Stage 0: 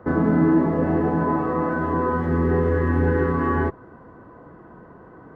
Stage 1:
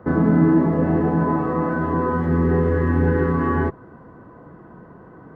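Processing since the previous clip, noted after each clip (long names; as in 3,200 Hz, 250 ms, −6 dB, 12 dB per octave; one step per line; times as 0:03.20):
parametric band 160 Hz +4.5 dB 1.2 octaves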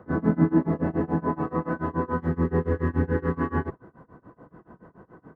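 amplitude tremolo 7 Hz, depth 96%
level −2.5 dB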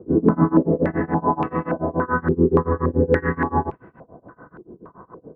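low-pass on a step sequencer 3.5 Hz 390–2,500 Hz
level +2.5 dB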